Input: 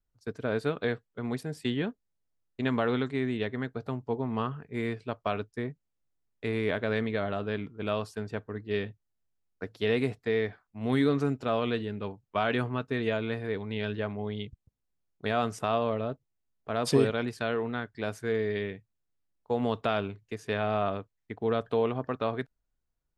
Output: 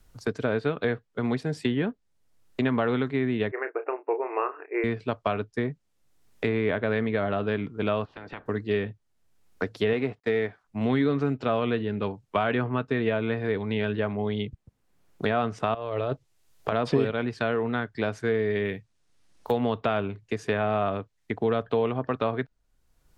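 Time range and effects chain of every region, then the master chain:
3.51–4.84 s: brick-wall FIR band-pass 300–2800 Hz + doubling 31 ms -10 dB
8.04–8.45 s: spectral peaks clipped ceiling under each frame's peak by 23 dB + compression 5:1, threshold -45 dBFS + distance through air 320 m
9.93–10.64 s: companding laws mixed up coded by A + bass shelf 130 Hz -9 dB + tape noise reduction on one side only decoder only
15.74–16.72 s: peaking EQ 220 Hz -15 dB 0.31 oct + compressor with a negative ratio -36 dBFS
18.65–19.58 s: treble shelf 3.3 kHz +11.5 dB + careless resampling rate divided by 3×, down filtered, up hold
whole clip: low-pass that closes with the level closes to 3 kHz, closed at -26.5 dBFS; three bands compressed up and down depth 70%; trim +3.5 dB

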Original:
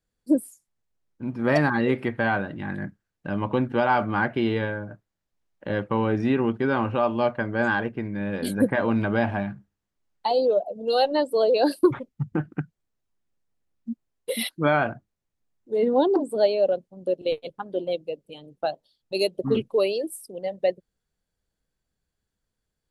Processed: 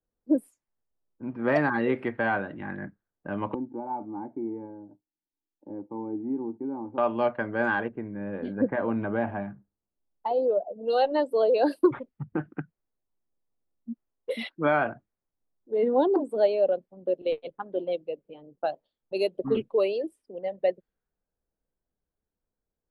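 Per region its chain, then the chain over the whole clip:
3.54–6.98 s: cascade formant filter u + peaking EQ 1.5 kHz +8 dB 1.8 oct
7.88–10.82 s: tape spacing loss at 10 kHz 29 dB + tape noise reduction on one side only decoder only
whole clip: three-band isolator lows -13 dB, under 230 Hz, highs -13 dB, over 3 kHz; level-controlled noise filter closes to 1 kHz, open at -23 dBFS; bass shelf 99 Hz +11 dB; trim -2 dB

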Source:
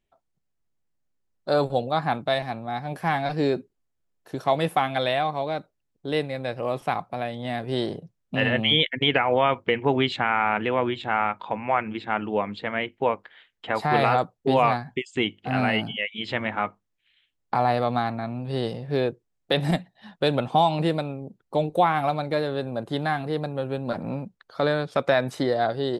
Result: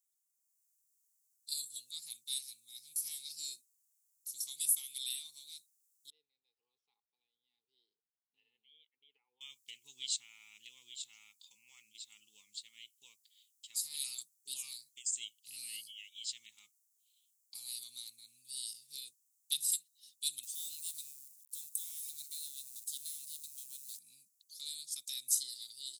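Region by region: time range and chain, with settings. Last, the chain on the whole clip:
6.10–9.41 s: two resonant band-passes 610 Hz, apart 0.86 oct + distance through air 270 m
20.43–23.99 s: companding laws mixed up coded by mu + compression 2:1, threshold -28 dBFS
whole clip: inverse Chebyshev high-pass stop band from 1.7 kHz, stop band 70 dB; level rider gain up to 7 dB; trim +12 dB

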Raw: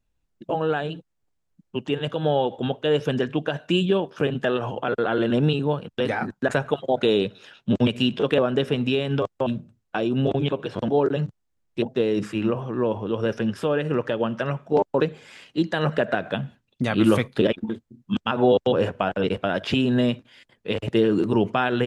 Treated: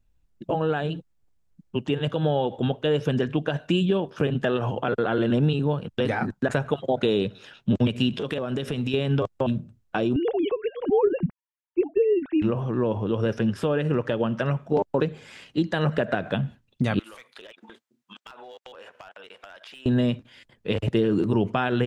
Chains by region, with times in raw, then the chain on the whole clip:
8.13–8.94 s: treble shelf 3.4 kHz +8.5 dB + compression 4:1, threshold -27 dBFS
10.16–12.42 s: formants replaced by sine waves + bass shelf 230 Hz +11 dB
16.99–19.86 s: high-pass 950 Hz + overload inside the chain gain 22 dB + compression 16:1, threshold -41 dBFS
whole clip: bass shelf 160 Hz +9 dB; compression 2:1, threshold -21 dBFS

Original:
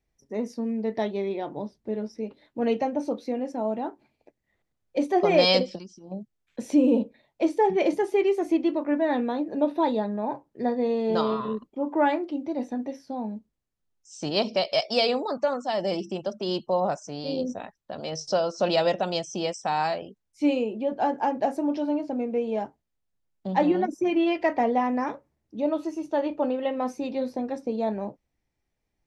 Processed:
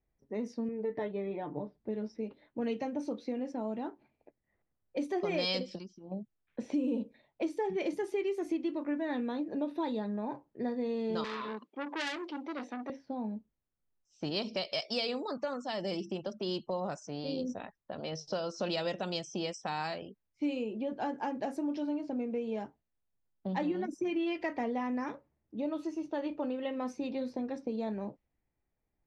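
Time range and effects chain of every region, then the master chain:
0.68–1.78 s: low-pass 1.9 kHz + comb 6.7 ms
11.24–12.90 s: Bessel high-pass 270 Hz, order 8 + treble shelf 2.5 kHz +11 dB + transformer saturation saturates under 3.3 kHz
whole clip: level-controlled noise filter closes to 1.8 kHz, open at -21.5 dBFS; dynamic bell 710 Hz, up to -7 dB, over -37 dBFS, Q 1.3; compression 2.5:1, threshold -28 dBFS; trim -3.5 dB

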